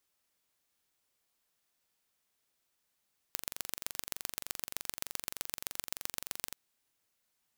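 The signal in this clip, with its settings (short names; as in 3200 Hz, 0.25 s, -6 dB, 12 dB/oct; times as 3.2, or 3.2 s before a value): pulse train 23.3/s, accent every 3, -6.5 dBFS 3.21 s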